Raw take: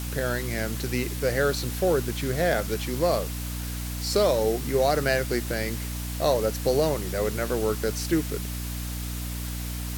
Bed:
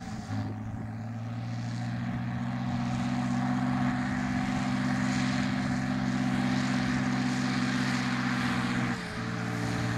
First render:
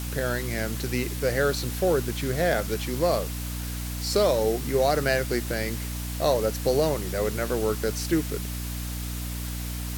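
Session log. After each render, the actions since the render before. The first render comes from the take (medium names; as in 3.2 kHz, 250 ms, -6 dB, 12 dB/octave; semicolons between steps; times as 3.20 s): no audible change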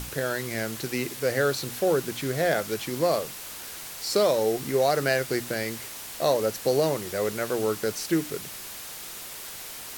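hum notches 60/120/180/240/300 Hz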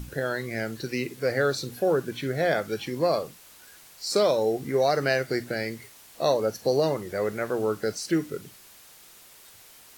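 noise print and reduce 12 dB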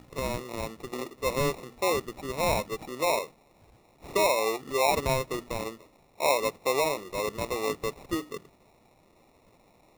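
band-pass filter 940 Hz, Q 0.7; sample-and-hold 28×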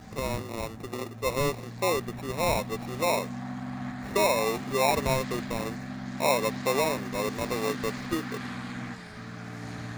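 add bed -7.5 dB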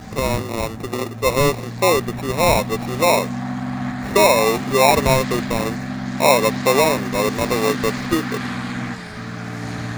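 trim +10.5 dB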